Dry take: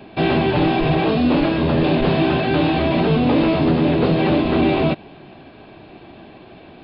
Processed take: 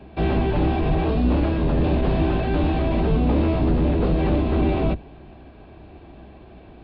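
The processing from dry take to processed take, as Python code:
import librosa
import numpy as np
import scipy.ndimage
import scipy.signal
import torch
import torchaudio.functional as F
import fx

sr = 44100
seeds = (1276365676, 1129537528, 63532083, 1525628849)

p1 = fx.octave_divider(x, sr, octaves=2, level_db=3.0)
p2 = 10.0 ** (-13.0 / 20.0) * np.tanh(p1 / 10.0 ** (-13.0 / 20.0))
p3 = p1 + (p2 * 10.0 ** (-4.0 / 20.0))
p4 = fx.high_shelf(p3, sr, hz=2500.0, db=-9.5)
y = p4 * 10.0 ** (-8.5 / 20.0)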